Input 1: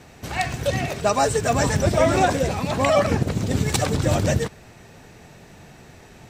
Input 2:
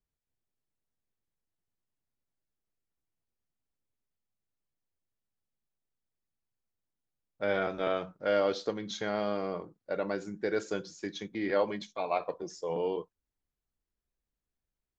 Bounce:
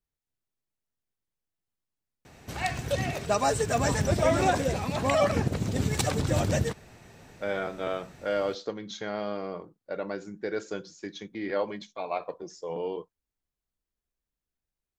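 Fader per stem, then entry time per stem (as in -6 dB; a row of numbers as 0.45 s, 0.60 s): -5.5 dB, -1.0 dB; 2.25 s, 0.00 s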